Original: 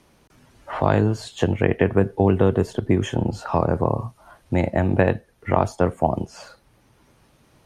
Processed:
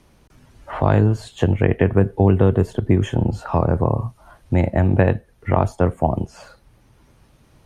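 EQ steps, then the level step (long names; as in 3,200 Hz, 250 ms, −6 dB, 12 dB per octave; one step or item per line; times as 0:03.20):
dynamic equaliser 5,300 Hz, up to −5 dB, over −50 dBFS, Q 1.3
low-shelf EQ 110 Hz +10.5 dB
0.0 dB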